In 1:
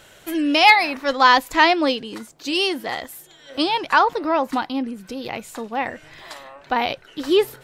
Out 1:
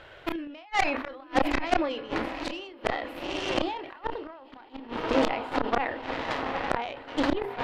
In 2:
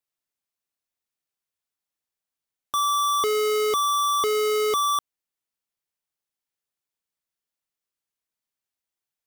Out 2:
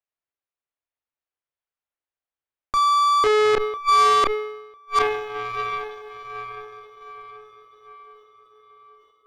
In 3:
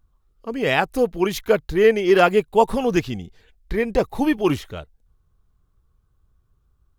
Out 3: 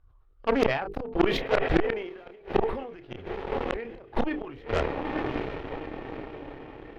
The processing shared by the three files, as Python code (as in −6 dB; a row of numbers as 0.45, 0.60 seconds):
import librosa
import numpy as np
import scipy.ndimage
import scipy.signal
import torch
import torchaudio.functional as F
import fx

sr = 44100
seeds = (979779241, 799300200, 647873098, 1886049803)

y = fx.peak_eq(x, sr, hz=190.0, db=-15.0, octaves=0.76)
y = fx.hum_notches(y, sr, base_hz=50, count=9)
y = fx.over_compress(y, sr, threshold_db=-21.0, ratio=-0.5)
y = fx.echo_diffused(y, sr, ms=883, feedback_pct=55, wet_db=-10.5)
y = fx.gate_flip(y, sr, shuts_db=-16.0, range_db=-29)
y = fx.air_absorb(y, sr, metres=400.0)
y = fx.doubler(y, sr, ms=30.0, db=-12.5)
y = fx.cheby_harmonics(y, sr, harmonics=(6, 7, 8), levels_db=(-17, -22, -15), full_scale_db=-15.0)
y = fx.sustainer(y, sr, db_per_s=60.0)
y = y * 10.0 ** (-6 / 20.0) / np.max(np.abs(y))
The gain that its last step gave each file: +7.5, +7.5, +6.5 decibels